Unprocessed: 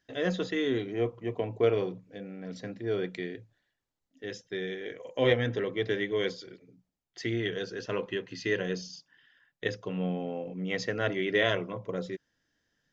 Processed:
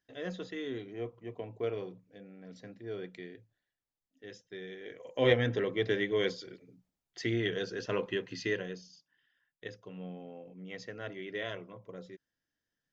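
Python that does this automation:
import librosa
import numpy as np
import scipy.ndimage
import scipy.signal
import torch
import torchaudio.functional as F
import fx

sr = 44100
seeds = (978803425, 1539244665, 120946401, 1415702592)

y = fx.gain(x, sr, db=fx.line((4.67, -9.5), (5.32, -0.5), (8.41, -0.5), (8.82, -12.0)))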